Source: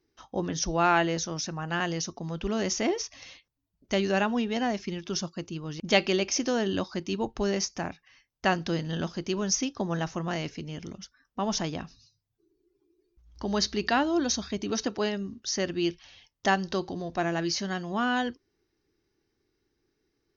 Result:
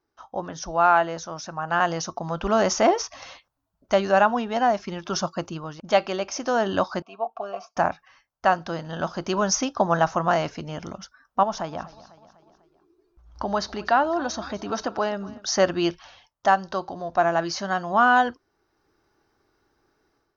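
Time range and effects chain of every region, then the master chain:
7.02–7.77 s: vowel filter a + comb 4.4 ms, depth 73%
11.43–15.46 s: treble shelf 6.4 kHz -8 dB + compression 1.5:1, threshold -43 dBFS + feedback delay 248 ms, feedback 50%, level -20 dB
whole clip: high-order bell 920 Hz +12 dB; level rider gain up to 11 dB; trim -5.5 dB

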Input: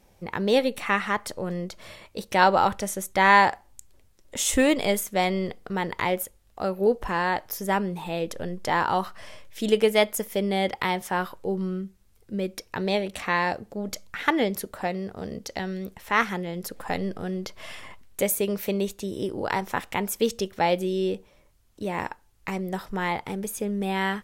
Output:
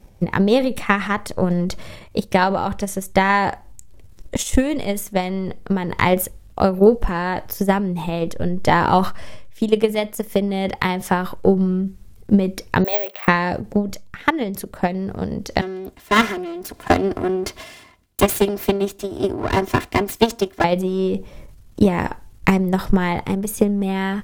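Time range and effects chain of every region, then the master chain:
12.84–13.28 s: high-pass 550 Hz 24 dB/octave + distance through air 200 m + careless resampling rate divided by 2×, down none, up zero stuff
15.61–20.64 s: comb filter that takes the minimum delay 2.9 ms + high-pass 140 Hz 6 dB/octave + three bands expanded up and down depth 40%
whole clip: bass shelf 310 Hz +11.5 dB; transient shaper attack +12 dB, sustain +8 dB; level rider; trim -1 dB

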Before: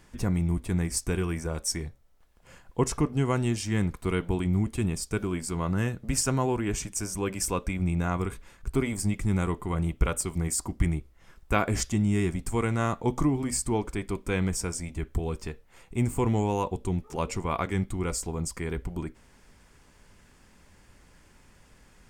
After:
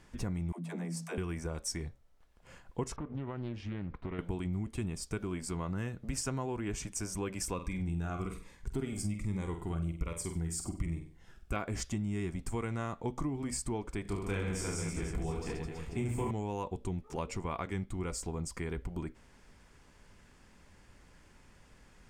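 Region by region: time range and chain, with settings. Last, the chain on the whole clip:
0.52–1.18 s: rippled Chebyshev high-pass 160 Hz, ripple 9 dB + phase dispersion lows, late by 78 ms, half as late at 330 Hz + level flattener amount 50%
2.96–4.19 s: compression 4:1, threshold -31 dBFS + distance through air 320 m + loudspeaker Doppler distortion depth 0.43 ms
7.54–11.56 s: flutter echo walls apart 8.2 m, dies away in 0.36 s + Shepard-style phaser falling 1.2 Hz
14.02–16.31 s: doubling 19 ms -10.5 dB + reverse bouncing-ball echo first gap 30 ms, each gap 1.4×, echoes 7, each echo -2 dB
whole clip: treble shelf 11 kHz -10 dB; compression 3:1, threshold -31 dBFS; trim -2.5 dB

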